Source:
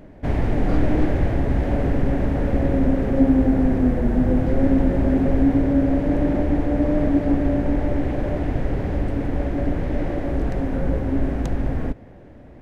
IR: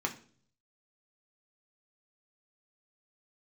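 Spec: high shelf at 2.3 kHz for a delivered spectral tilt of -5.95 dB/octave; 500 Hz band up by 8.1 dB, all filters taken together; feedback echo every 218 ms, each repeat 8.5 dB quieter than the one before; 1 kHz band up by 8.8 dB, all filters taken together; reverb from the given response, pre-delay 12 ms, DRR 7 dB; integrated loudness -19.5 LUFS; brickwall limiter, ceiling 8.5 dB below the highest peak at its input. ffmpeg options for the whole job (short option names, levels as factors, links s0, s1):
-filter_complex "[0:a]equalizer=f=500:t=o:g=7,equalizer=f=1000:t=o:g=8,highshelf=f=2300:g=7,alimiter=limit=0.299:level=0:latency=1,aecho=1:1:218|436|654|872:0.376|0.143|0.0543|0.0206,asplit=2[s0][s1];[1:a]atrim=start_sample=2205,adelay=12[s2];[s1][s2]afir=irnorm=-1:irlink=0,volume=0.251[s3];[s0][s3]amix=inputs=2:normalize=0,volume=0.944"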